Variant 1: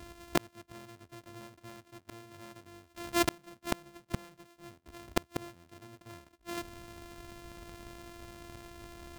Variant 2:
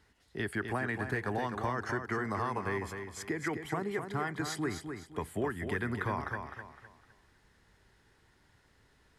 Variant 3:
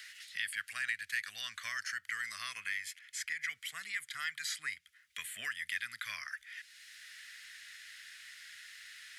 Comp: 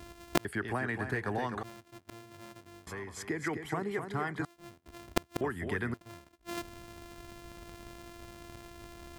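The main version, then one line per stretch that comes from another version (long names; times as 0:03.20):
1
0:00.45–0:01.63: punch in from 2
0:02.87–0:04.45: punch in from 2
0:05.41–0:05.94: punch in from 2
not used: 3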